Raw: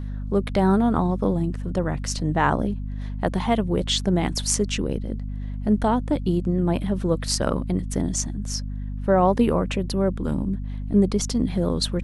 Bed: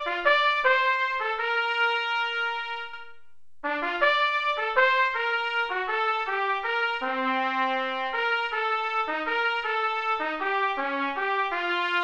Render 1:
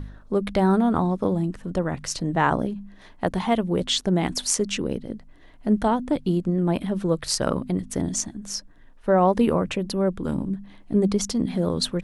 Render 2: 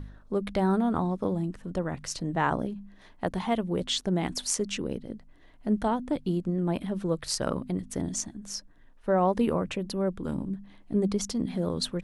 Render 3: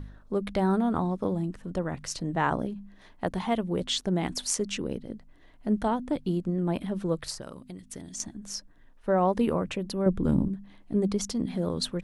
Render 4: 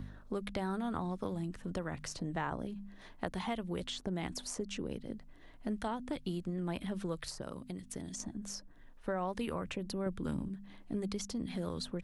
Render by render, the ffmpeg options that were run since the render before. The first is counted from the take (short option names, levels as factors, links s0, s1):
-af "bandreject=f=50:t=h:w=4,bandreject=f=100:t=h:w=4,bandreject=f=150:t=h:w=4,bandreject=f=200:t=h:w=4,bandreject=f=250:t=h:w=4"
-af "volume=0.531"
-filter_complex "[0:a]asettb=1/sr,asplit=3[s0][s1][s2];[s0]atrim=end=7.304[s3];[s1]atrim=start=7.3:end=8.2,asetpts=PTS-STARTPTS,afade=t=in:d=0.004:c=qsin,afade=t=out:st=0.896:d=0.004:c=qsin,acrossover=split=1700|3900[s4][s5][s6];[s4]acompressor=threshold=0.00891:ratio=4[s7];[s5]acompressor=threshold=0.00141:ratio=4[s8];[s6]acompressor=threshold=0.0112:ratio=4[s9];[s7][s8][s9]amix=inputs=3:normalize=0[s10];[s2]atrim=start=8.196[s11];[s3][s10]acrossfade=d=0.004:c1=hsin:c2=qsin[s12];[s12][s11]acrossfade=d=0.004:c1=qsin:c2=hsin,asettb=1/sr,asplit=3[s13][s14][s15];[s13]atrim=end=10.064[s16];[s14]atrim=start=10.06:end=10.48,asetpts=PTS-STARTPTS,afade=t=in:d=0.004:c=qsin,afade=t=out:st=0.416:d=0.004:c=qsin,lowshelf=f=460:g=10[s17];[s15]atrim=start=10.476[s18];[s16][s17]acrossfade=d=0.004:c1=hsin:c2=qsin[s19];[s19][s18]acrossfade=d=0.004:c1=qsin:c2=hsin"
-filter_complex "[0:a]acrossover=split=87|1300[s0][s1][s2];[s0]acompressor=threshold=0.00355:ratio=4[s3];[s1]acompressor=threshold=0.0141:ratio=4[s4];[s2]acompressor=threshold=0.00708:ratio=4[s5];[s3][s4][s5]amix=inputs=3:normalize=0"